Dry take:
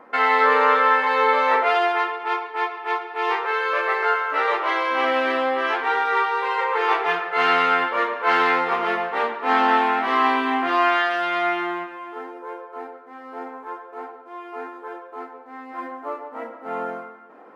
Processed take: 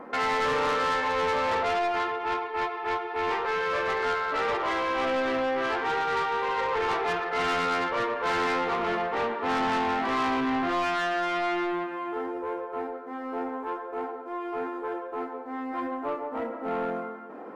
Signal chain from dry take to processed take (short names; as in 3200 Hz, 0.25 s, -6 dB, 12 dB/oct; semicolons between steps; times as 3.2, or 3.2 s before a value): low shelf 490 Hz +10.5 dB; in parallel at +2.5 dB: compressor 10:1, threshold -30 dBFS, peak gain reduction 19.5 dB; on the sum: soft clip -16.5 dBFS, distortion -10 dB; gain -6.5 dB